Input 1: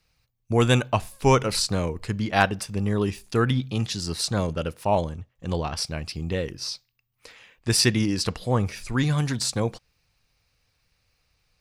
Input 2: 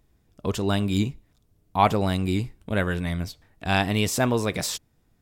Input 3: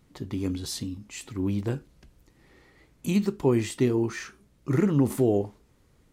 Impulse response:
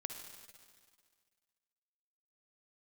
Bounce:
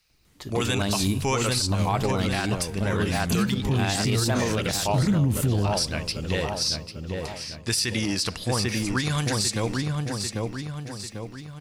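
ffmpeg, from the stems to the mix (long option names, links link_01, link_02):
-filter_complex "[0:a]volume=-1.5dB,asplit=3[link_01][link_02][link_03];[link_02]volume=-16.5dB[link_04];[link_03]volume=-7dB[link_05];[1:a]adelay=100,volume=-2.5dB[link_06];[2:a]asubboost=boost=11.5:cutoff=140,adelay=250,volume=2.5dB[link_07];[link_01][link_07]amix=inputs=2:normalize=0,tiltshelf=frequency=1300:gain=-6,acompressor=threshold=-23dB:ratio=1.5,volume=0dB[link_08];[3:a]atrim=start_sample=2205[link_09];[link_04][link_09]afir=irnorm=-1:irlink=0[link_10];[link_05]aecho=0:1:794|1588|2382|3176|3970|4764|5558:1|0.48|0.23|0.111|0.0531|0.0255|0.0122[link_11];[link_06][link_08][link_10][link_11]amix=inputs=4:normalize=0,dynaudnorm=framelen=370:gausssize=5:maxgain=4dB,alimiter=limit=-14.5dB:level=0:latency=1:release=61"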